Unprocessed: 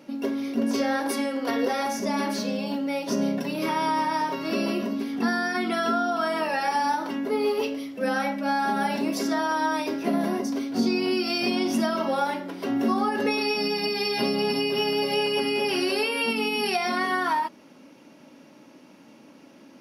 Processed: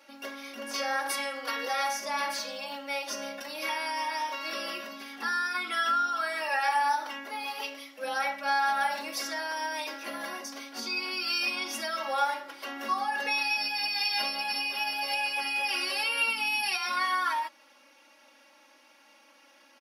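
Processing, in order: HPF 960 Hz 12 dB/oct; comb 3.6 ms, depth 95%; gain -3 dB

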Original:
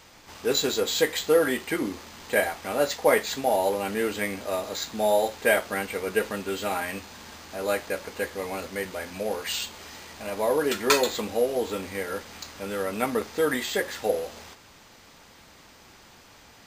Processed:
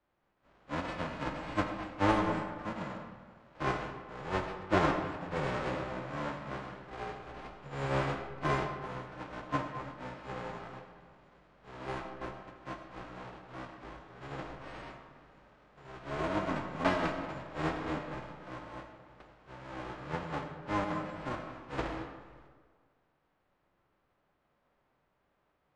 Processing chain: spectral whitening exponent 0.1; LPF 1900 Hz 12 dB/oct; in parallel at -1 dB: compressor, threshold -44 dBFS, peak gain reduction 21 dB; on the sum: wide varispeed 0.647×; on a send at -4 dB: reverb RT60 2.4 s, pre-delay 50 ms; on the sum: three-band expander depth 70%; gain -6.5 dB

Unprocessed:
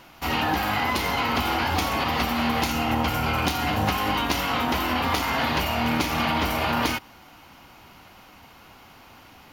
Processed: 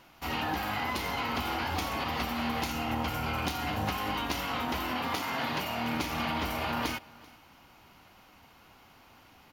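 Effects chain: 4.91–5.95 HPF 100 Hz 24 dB/oct; on a send: echo 0.386 s -23 dB; on the sum: gain -8 dB

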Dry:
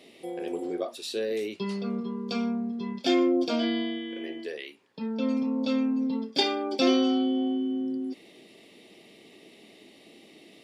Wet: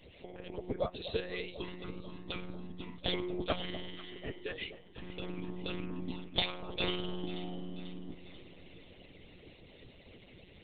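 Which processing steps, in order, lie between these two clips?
monotone LPC vocoder at 8 kHz 180 Hz; harmonic-percussive split harmonic -18 dB; echo with dull and thin repeats by turns 0.245 s, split 920 Hz, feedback 73%, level -12 dB; gain +2.5 dB

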